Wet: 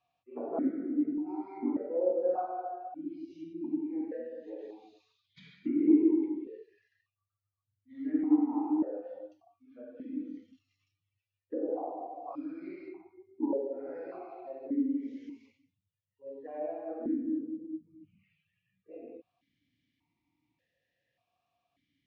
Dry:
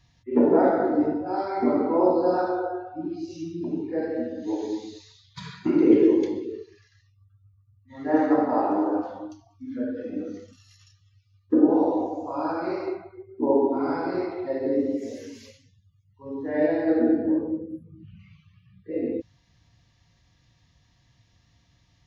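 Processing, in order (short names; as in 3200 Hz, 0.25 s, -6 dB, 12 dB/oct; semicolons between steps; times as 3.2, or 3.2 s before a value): treble ducked by the level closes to 1700 Hz, closed at -21 dBFS; dynamic EQ 690 Hz, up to -4 dB, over -33 dBFS, Q 0.95; vowel sequencer 1.7 Hz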